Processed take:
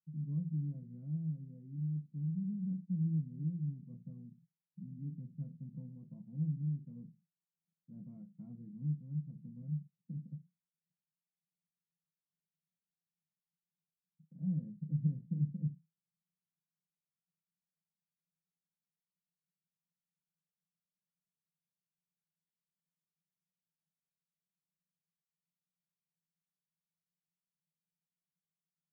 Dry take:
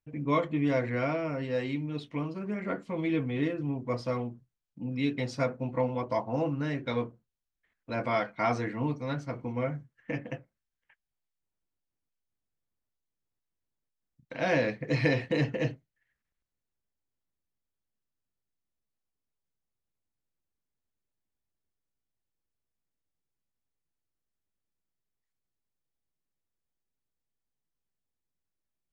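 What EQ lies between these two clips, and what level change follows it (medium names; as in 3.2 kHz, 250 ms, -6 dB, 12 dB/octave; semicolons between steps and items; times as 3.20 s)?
Butterworth band-pass 170 Hz, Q 5.2; +6.5 dB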